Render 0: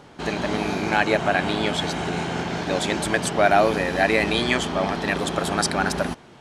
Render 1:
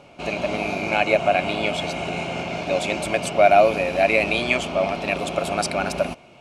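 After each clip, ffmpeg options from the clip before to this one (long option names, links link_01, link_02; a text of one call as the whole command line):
ffmpeg -i in.wav -af "superequalizer=8b=2.51:11b=0.501:12b=2.82,volume=-3.5dB" out.wav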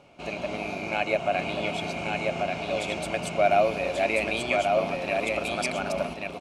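ffmpeg -i in.wav -af "aecho=1:1:1136:0.668,volume=-7dB" out.wav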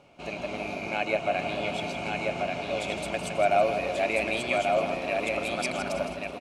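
ffmpeg -i in.wav -af "aecho=1:1:162|324|486|648|810:0.335|0.157|0.074|0.0348|0.0163,volume=-2dB" out.wav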